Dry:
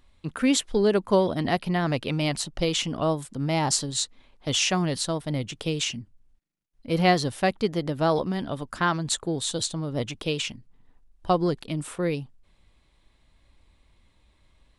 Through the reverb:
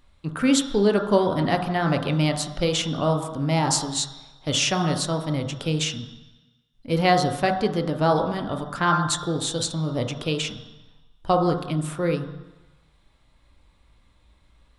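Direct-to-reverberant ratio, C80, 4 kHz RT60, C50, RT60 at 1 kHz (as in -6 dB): 2.5 dB, 8.5 dB, 1.2 s, 6.5 dB, 1.1 s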